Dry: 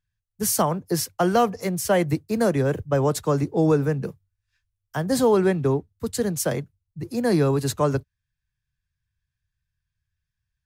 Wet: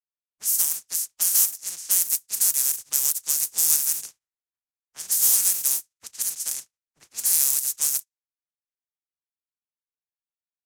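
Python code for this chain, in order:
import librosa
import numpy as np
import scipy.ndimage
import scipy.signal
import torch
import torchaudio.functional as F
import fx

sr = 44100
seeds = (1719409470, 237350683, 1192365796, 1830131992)

y = fx.spec_flatten(x, sr, power=0.2)
y = fx.high_shelf_res(y, sr, hz=5000.0, db=7.5, q=1.5)
y = fx.env_lowpass(y, sr, base_hz=1100.0, full_db=-13.0)
y = librosa.effects.preemphasis(y, coef=0.9, zi=[0.0])
y = y * 10.0 ** (-7.0 / 20.0)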